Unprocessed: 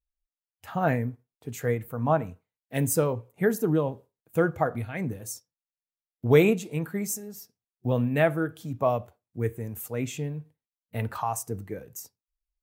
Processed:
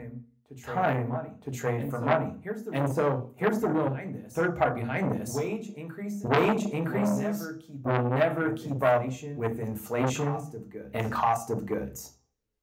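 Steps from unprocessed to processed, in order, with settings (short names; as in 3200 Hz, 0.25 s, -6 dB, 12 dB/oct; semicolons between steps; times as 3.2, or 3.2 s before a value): de-esser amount 65%; LPF 1000 Hz 6 dB/oct; tilt +2.5 dB/oct; notches 50/100/150/200/250/300/350/400 Hz; in parallel at +2 dB: limiter -21.5 dBFS, peak gain reduction 9.5 dB; on the sum: vocal rider within 3 dB 0.5 s; reverse echo 0.963 s -11.5 dB; on a send at -5 dB: reverb RT60 0.40 s, pre-delay 3 ms; on the sum: core saturation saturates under 1700 Hz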